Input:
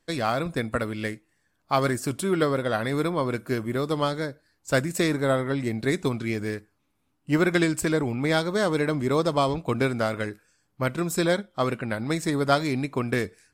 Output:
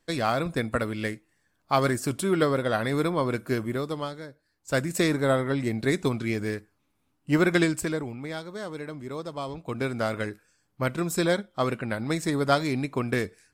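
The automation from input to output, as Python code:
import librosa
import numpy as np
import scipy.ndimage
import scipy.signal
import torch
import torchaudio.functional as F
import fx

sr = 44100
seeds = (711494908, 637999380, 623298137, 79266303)

y = fx.gain(x, sr, db=fx.line((3.64, 0.0), (4.23, -11.0), (4.94, 0.0), (7.63, 0.0), (8.33, -12.0), (9.35, -12.0), (10.11, -1.0)))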